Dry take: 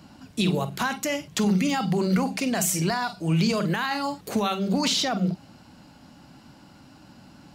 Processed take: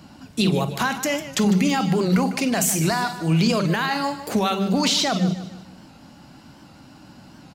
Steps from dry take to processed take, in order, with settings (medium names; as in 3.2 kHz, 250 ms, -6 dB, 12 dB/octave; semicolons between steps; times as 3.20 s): feedback delay 151 ms, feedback 42%, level -13 dB; warped record 78 rpm, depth 100 cents; trim +3.5 dB